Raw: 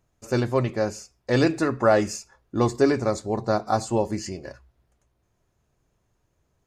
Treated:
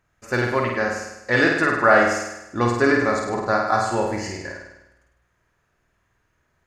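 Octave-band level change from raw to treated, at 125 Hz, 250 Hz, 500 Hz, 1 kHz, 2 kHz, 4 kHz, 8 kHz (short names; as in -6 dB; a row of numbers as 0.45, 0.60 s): -1.5, +0.5, +1.5, +6.5, +13.0, +3.0, +1.0 dB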